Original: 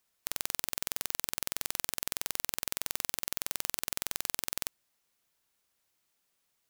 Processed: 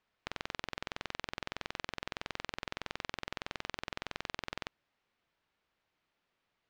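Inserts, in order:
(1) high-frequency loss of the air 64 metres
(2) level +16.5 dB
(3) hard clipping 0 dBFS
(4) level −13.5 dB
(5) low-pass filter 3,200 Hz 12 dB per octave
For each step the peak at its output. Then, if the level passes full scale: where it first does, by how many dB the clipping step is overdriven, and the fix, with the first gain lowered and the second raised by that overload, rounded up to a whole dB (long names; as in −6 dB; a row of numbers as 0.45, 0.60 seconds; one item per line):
−13.0, +3.5, 0.0, −13.5, −17.5 dBFS
step 2, 3.5 dB
step 2 +12.5 dB, step 4 −9.5 dB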